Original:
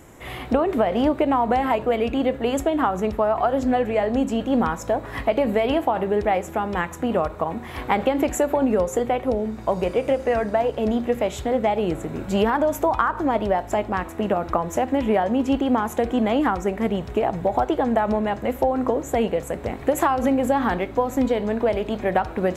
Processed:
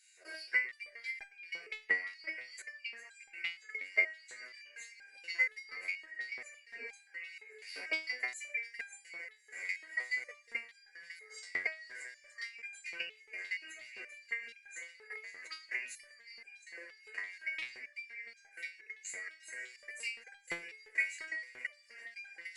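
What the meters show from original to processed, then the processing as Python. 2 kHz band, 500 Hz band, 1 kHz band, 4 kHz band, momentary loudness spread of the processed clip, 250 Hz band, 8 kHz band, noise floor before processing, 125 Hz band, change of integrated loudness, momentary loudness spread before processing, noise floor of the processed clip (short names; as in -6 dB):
-3.5 dB, -36.0 dB, -38.0 dB, -10.5 dB, 16 LU, under -40 dB, -12.5 dB, -36 dBFS, under -40 dB, -17.0 dB, 5 LU, -64 dBFS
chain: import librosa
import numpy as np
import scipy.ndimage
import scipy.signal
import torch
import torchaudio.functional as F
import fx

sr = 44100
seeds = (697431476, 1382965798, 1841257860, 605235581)

y = fx.band_shuffle(x, sr, order='2143')
y = fx.brickwall_lowpass(y, sr, high_hz=11000.0)
y = fx.low_shelf(y, sr, hz=140.0, db=-5.0)
y = fx.echo_diffused(y, sr, ms=591, feedback_pct=61, wet_db=-12.0)
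y = fx.level_steps(y, sr, step_db=18)
y = fx.notch_comb(y, sr, f0_hz=860.0)
y = fx.filter_lfo_highpass(y, sr, shape='square', hz=2.9, low_hz=440.0, high_hz=3800.0, q=2.7)
y = fx.high_shelf(y, sr, hz=4100.0, db=9.5)
y = fx.resonator_held(y, sr, hz=4.2, low_hz=92.0, high_hz=800.0)
y = F.gain(torch.from_numpy(y), 1.0).numpy()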